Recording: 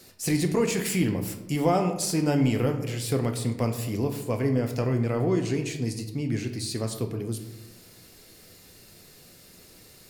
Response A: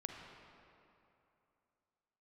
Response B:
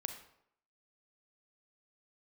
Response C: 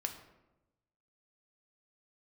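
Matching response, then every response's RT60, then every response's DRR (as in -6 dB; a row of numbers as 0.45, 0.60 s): C; 2.8, 0.75, 1.0 s; 2.0, 6.0, 4.5 dB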